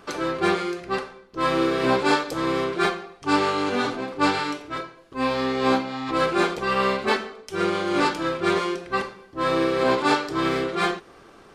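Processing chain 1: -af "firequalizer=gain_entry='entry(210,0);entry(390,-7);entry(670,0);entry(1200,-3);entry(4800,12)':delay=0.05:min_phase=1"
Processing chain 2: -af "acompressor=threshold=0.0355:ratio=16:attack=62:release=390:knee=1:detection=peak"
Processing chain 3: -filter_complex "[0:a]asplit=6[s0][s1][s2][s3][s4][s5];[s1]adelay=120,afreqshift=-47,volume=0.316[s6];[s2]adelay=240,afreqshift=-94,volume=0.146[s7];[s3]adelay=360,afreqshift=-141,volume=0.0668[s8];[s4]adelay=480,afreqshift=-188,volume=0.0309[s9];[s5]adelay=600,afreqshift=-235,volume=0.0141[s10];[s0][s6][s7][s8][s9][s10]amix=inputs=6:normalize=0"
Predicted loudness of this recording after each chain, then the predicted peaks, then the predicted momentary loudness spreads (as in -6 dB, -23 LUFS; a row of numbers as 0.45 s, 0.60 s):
-23.5 LUFS, -31.5 LUFS, -23.5 LUFS; -5.0 dBFS, -13.5 dBFS, -6.5 dBFS; 9 LU, 4 LU, 8 LU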